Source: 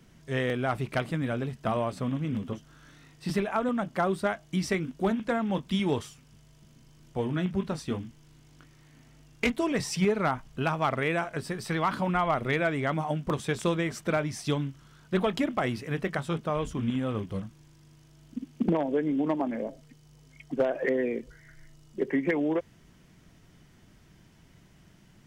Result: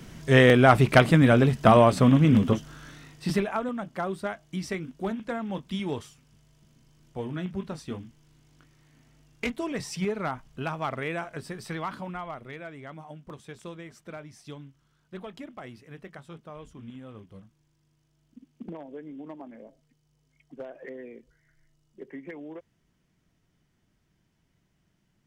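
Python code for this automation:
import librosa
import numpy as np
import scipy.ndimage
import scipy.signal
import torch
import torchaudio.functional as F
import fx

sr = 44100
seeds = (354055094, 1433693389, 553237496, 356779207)

y = fx.gain(x, sr, db=fx.line((2.49, 12.0), (3.38, 2.5), (3.73, -4.0), (11.67, -4.0), (12.52, -14.0)))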